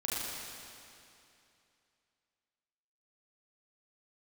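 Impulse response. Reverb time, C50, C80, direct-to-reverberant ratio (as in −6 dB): 2.7 s, −3.5 dB, −2.0 dB, −7.0 dB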